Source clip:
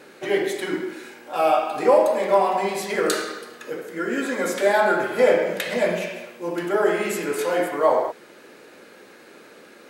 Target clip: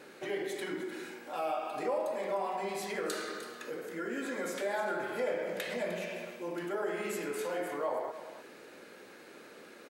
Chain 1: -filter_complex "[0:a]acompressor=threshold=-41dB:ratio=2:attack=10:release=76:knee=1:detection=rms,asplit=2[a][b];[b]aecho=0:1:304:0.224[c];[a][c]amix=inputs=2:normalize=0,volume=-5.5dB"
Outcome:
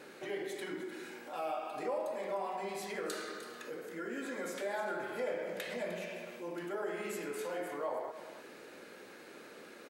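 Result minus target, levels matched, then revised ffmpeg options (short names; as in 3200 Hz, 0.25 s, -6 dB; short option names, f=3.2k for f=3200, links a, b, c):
compressor: peak gain reduction +3.5 dB
-filter_complex "[0:a]acompressor=threshold=-34dB:ratio=2:attack=10:release=76:knee=1:detection=rms,asplit=2[a][b];[b]aecho=0:1:304:0.224[c];[a][c]amix=inputs=2:normalize=0,volume=-5.5dB"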